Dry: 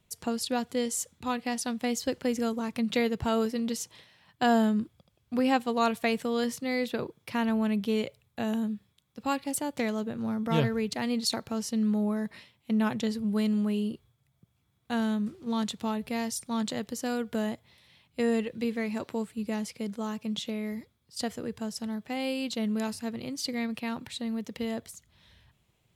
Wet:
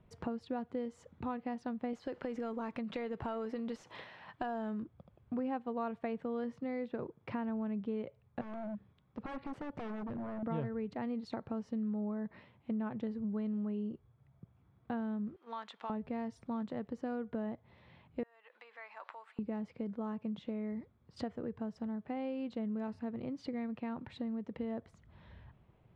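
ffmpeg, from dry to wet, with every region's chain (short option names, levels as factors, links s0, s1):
-filter_complex "[0:a]asettb=1/sr,asplit=3[s0][s1][s2];[s0]atrim=end=1.934[s3];[s1]atrim=start=1.93:end=4.83,asetpts=PTS-STARTPTS,afade=t=in:d=0.004:c=qsin,afade=t=out:st=2.896:d=0.004:c=qsin,aemphasis=mode=production:type=50fm,acompressor=threshold=0.0316:ratio=6:attack=3.2:release=140:knee=1:detection=peak,asplit=2[s4][s5];[s5]highpass=f=720:p=1,volume=4.47,asoftclip=type=tanh:threshold=0.15[s6];[s4][s6]amix=inputs=2:normalize=0,lowpass=f=6100:p=1,volume=0.501[s7];[s2]atrim=start=4.826[s8];[s3][s7]acrossfade=d=0.004:c1=hsin:c2=qsin[s9];[s9][s8]acrossfade=d=0.004:c1=qsin:c2=hsin,asettb=1/sr,asplit=3[s10][s11][s12];[s10]atrim=end=8.414[s13];[s11]atrim=start=8.41:end=10.43,asetpts=PTS-STARTPTS,afade=t=in:d=0.004:c=qsin,afade=t=out:st=2.016:d=0.004:c=qsin,acompressor=threshold=0.0112:ratio=1.5:attack=3.2:release=140:knee=1:detection=peak,aeval=exprs='0.0158*(abs(mod(val(0)/0.0158+3,4)-2)-1)':c=same[s14];[s12]atrim=start=10.426[s15];[s13][s14]acrossfade=d=0.004:c1=hsin:c2=qsin[s16];[s16][s15]acrossfade=d=0.004:c1=qsin:c2=hsin,asettb=1/sr,asplit=3[s17][s18][s19];[s17]atrim=end=15.364[s20];[s18]atrim=start=15.36:end=15.9,asetpts=PTS-STARTPTS,afade=t=in:d=0.004:c=qsin,afade=t=out:st=0.536:d=0.004:c=qsin,highpass=1100,aeval=exprs='val(0)+0.000316*sin(2*PI*3200*n/s)':c=same[s21];[s19]atrim=start=15.896[s22];[s20][s21]acrossfade=d=0.004:c1=hsin:c2=qsin[s23];[s23][s22]acrossfade=d=0.004:c1=qsin:c2=hsin,asettb=1/sr,asplit=3[s24][s25][s26];[s24]atrim=end=18.234[s27];[s25]atrim=start=18.23:end=19.39,asetpts=PTS-STARTPTS,afade=t=in:d=0.004:c=qsin,afade=t=out:st=1.156:d=0.004:c=qsin,acompressor=threshold=0.0141:ratio=8:attack=3.2:release=140:knee=1:detection=peak,highpass=f=880:w=0.5412,highpass=f=880:w=1.3066[s28];[s26]atrim=start=19.386[s29];[s27][s28]acrossfade=d=0.004:c1=hsin:c2=qsin[s30];[s30][s29]acrossfade=d=0.004:c1=qsin:c2=hsin,lowpass=1300,acompressor=threshold=0.00447:ratio=3,volume=2.11"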